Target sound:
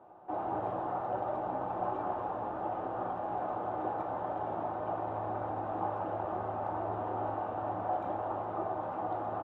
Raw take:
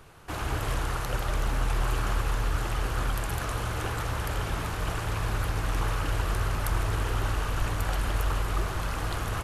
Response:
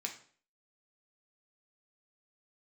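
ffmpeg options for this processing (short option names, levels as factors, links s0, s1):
-filter_complex "[0:a]lowpass=f=770:t=q:w=8.2,asplit=2[s0][s1];[s1]adelay=130,highpass=300,lowpass=3400,asoftclip=type=hard:threshold=0.1,volume=0.0891[s2];[s0][s2]amix=inputs=2:normalize=0[s3];[1:a]atrim=start_sample=2205,asetrate=66150,aresample=44100[s4];[s3][s4]afir=irnorm=-1:irlink=0"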